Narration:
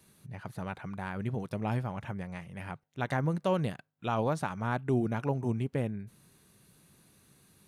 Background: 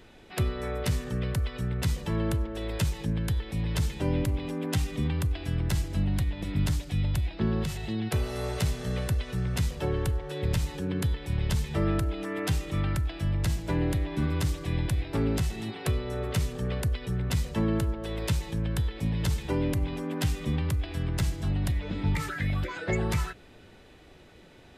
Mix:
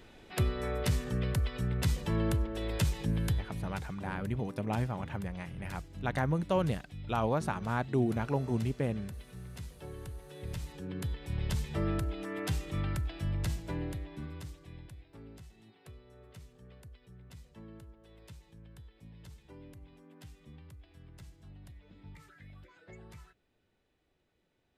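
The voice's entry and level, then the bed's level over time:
3.05 s, −0.5 dB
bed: 0:03.31 −2 dB
0:03.85 −16.5 dB
0:09.94 −16.5 dB
0:11.43 −5.5 dB
0:13.44 −5.5 dB
0:15.10 −24 dB

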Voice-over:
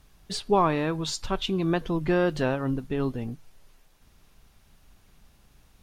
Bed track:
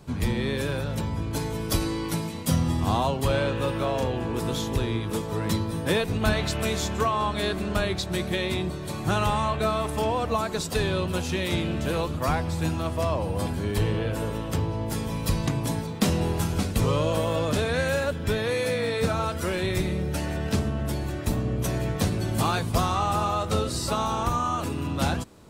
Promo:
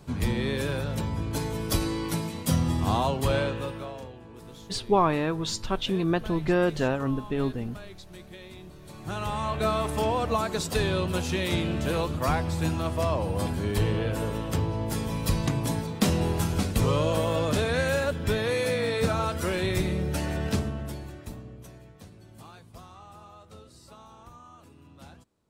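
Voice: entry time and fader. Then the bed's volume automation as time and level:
4.40 s, 0.0 dB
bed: 0:03.39 −1 dB
0:04.19 −18 dB
0:08.58 −18 dB
0:09.68 −0.5 dB
0:20.47 −0.5 dB
0:21.92 −23.5 dB

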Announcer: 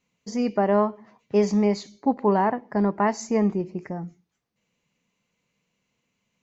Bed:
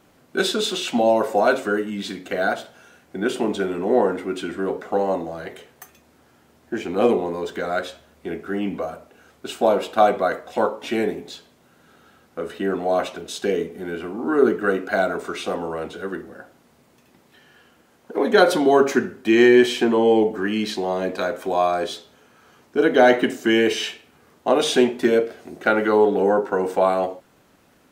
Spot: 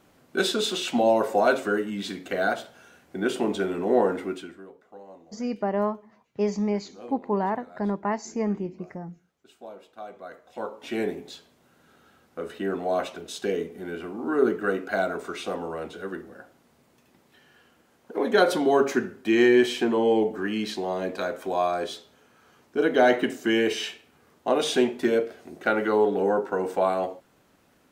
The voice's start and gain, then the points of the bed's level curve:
5.05 s, −5.0 dB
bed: 0:04.27 −3 dB
0:04.73 −24.5 dB
0:10.04 −24.5 dB
0:11.02 −5 dB

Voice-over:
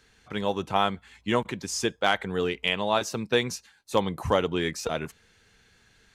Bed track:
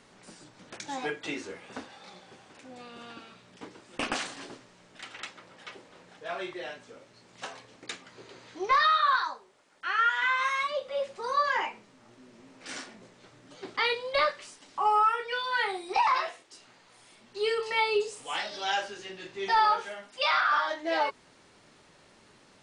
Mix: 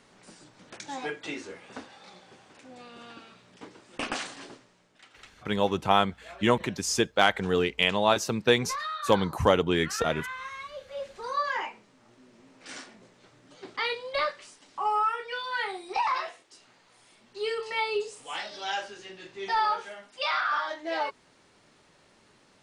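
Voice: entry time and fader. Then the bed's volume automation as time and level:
5.15 s, +2.0 dB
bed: 0:04.48 −1 dB
0:05.00 −11 dB
0:10.70 −11 dB
0:11.14 −2.5 dB

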